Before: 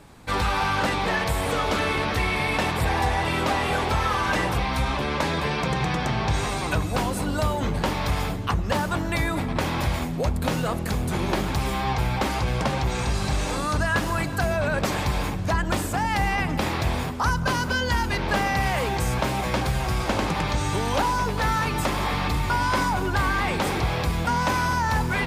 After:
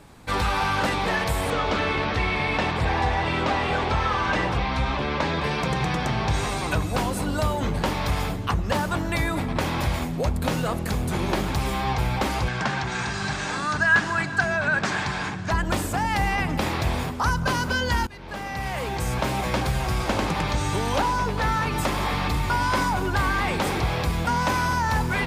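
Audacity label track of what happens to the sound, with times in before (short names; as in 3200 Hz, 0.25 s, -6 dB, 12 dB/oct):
1.500000	5.440000	LPF 5000 Hz
12.480000	15.510000	speaker cabinet 130–7800 Hz, peaks and dips at 280 Hz -5 dB, 520 Hz -10 dB, 1600 Hz +9 dB
18.070000	19.330000	fade in, from -21 dB
20.980000	21.710000	high shelf 9400 Hz -> 5100 Hz -6.5 dB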